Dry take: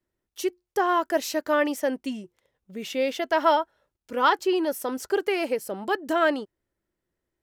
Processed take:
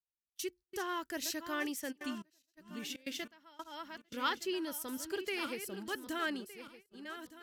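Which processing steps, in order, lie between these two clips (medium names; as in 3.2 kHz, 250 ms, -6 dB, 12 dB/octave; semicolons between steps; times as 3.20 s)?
backward echo that repeats 607 ms, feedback 47%, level -10 dB; gate -41 dBFS, range -23 dB; amplifier tone stack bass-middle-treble 6-0-2; 1.91–4.13 s: trance gate "x...xxxx.x" 142 bpm -24 dB; trim +10 dB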